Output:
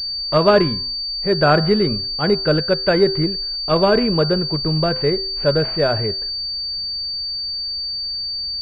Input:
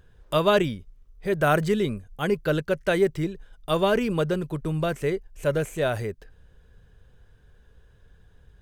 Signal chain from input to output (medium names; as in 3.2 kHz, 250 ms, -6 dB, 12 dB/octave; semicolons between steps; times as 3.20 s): de-hum 128.6 Hz, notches 15; class-D stage that switches slowly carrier 4.6 kHz; trim +7 dB